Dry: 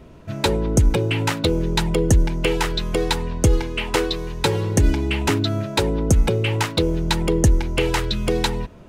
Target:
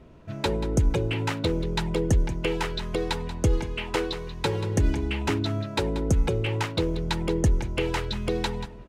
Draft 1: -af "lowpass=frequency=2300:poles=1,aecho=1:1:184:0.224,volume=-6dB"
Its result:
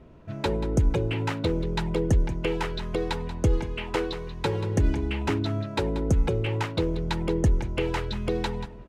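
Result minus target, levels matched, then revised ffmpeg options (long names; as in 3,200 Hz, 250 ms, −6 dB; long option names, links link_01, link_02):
4,000 Hz band −3.0 dB
-af "lowpass=frequency=4900:poles=1,aecho=1:1:184:0.224,volume=-6dB"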